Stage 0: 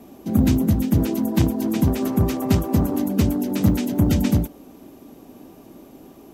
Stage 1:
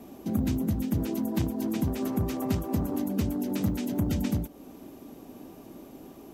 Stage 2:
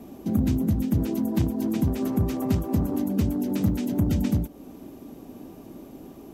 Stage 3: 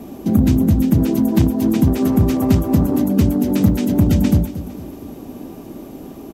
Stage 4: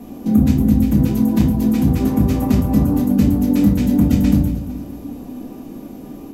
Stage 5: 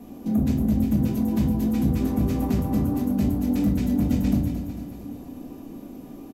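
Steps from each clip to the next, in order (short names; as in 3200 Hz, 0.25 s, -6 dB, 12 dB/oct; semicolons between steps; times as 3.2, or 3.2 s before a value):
compressor 2:1, threshold -28 dBFS, peak gain reduction 9.5 dB; gain -2 dB
low shelf 390 Hz +5.5 dB
feedback echo 0.228 s, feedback 45%, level -14.5 dB; gain +9 dB
shoebox room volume 350 m³, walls furnished, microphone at 1.9 m; gain -4.5 dB
soft clip -6.5 dBFS, distortion -19 dB; feedback echo 0.225 s, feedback 56%, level -10 dB; gain -7 dB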